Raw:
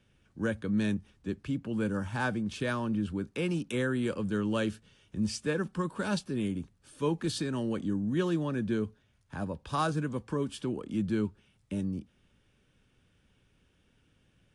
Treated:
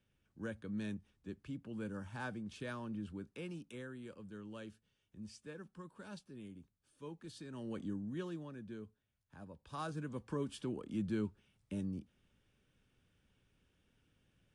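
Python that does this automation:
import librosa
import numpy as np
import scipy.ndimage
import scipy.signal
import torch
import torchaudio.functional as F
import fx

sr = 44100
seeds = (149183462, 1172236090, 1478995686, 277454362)

y = fx.gain(x, sr, db=fx.line((3.19, -12.0), (3.99, -19.0), (7.35, -19.0), (7.81, -8.5), (8.58, -17.5), (9.45, -17.5), (10.31, -7.0)))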